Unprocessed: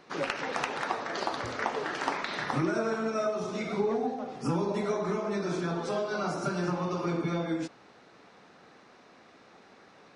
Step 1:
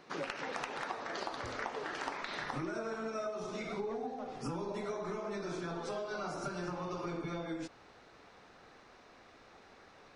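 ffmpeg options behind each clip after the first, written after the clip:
-af "asubboost=boost=7:cutoff=64,acompressor=threshold=0.0158:ratio=2.5,volume=0.794"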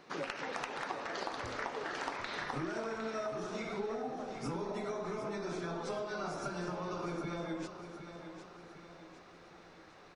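-af "aecho=1:1:757|1514|2271|3028|3785:0.316|0.155|0.0759|0.0372|0.0182"

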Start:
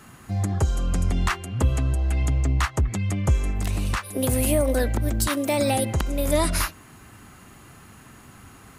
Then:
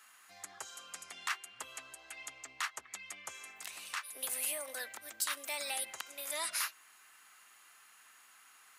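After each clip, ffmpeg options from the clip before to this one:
-af "highpass=1400,volume=0.422"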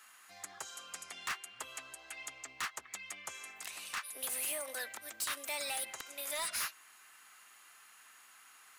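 -af "volume=50.1,asoftclip=hard,volume=0.02,volume=1.19"

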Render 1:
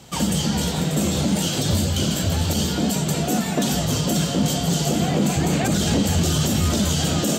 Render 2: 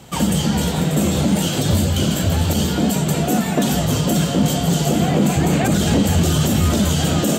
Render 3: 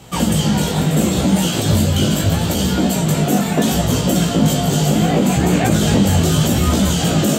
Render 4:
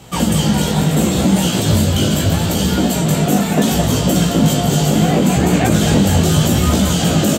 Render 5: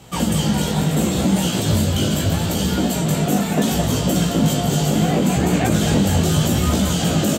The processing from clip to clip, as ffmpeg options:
-af "equalizer=f=5200:w=1.1:g=-6,volume=1.58"
-af "flanger=delay=16:depth=4.1:speed=0.74,volume=1.78"
-af "aecho=1:1:218:0.316,volume=1.12"
-af "volume=0.631" -ar 44100 -c:a libmp3lame -b:a 256k

